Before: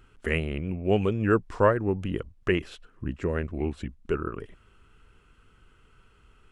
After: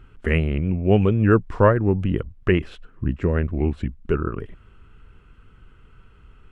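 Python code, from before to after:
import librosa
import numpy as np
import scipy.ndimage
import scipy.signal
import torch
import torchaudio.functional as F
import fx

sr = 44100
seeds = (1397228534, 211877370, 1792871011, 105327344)

y = fx.bass_treble(x, sr, bass_db=6, treble_db=-10)
y = y * 10.0 ** (4.0 / 20.0)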